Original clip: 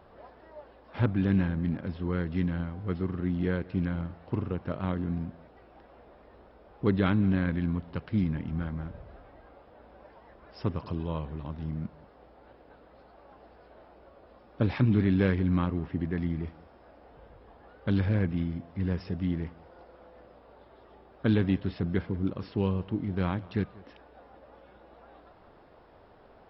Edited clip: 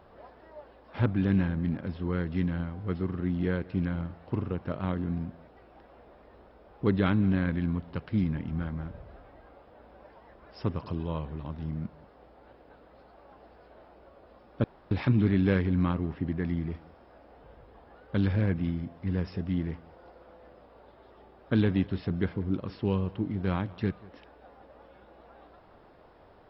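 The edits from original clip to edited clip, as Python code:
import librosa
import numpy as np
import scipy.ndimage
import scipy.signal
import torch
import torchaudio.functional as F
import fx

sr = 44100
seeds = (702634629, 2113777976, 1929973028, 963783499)

y = fx.edit(x, sr, fx.insert_room_tone(at_s=14.64, length_s=0.27), tone=tone)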